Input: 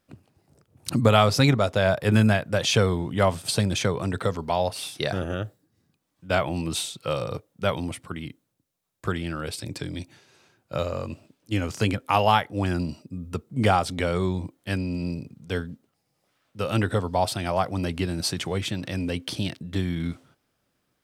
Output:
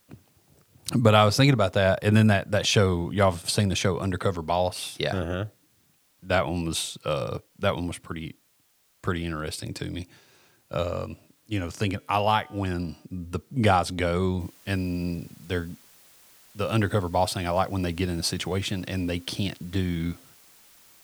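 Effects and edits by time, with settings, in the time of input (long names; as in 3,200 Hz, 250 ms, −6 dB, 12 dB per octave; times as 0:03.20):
0:11.05–0:13.05: tuned comb filter 150 Hz, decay 1.9 s, mix 30%
0:14.40: noise floor change −66 dB −55 dB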